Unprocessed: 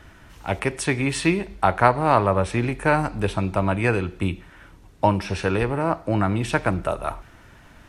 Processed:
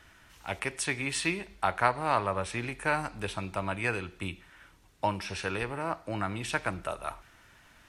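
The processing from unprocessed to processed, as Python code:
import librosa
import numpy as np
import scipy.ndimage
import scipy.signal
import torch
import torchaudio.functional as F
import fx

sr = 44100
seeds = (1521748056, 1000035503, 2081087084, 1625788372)

y = fx.tilt_shelf(x, sr, db=-5.5, hz=970.0)
y = F.gain(torch.from_numpy(y), -8.5).numpy()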